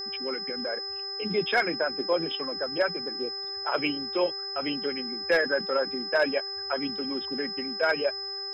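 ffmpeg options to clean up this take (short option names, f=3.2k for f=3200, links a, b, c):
-af "bandreject=f=394.3:t=h:w=4,bandreject=f=788.6:t=h:w=4,bandreject=f=1.1829k:t=h:w=4,bandreject=f=1.5772k:t=h:w=4,bandreject=f=1.9715k:t=h:w=4,bandreject=f=5.1k:w=30"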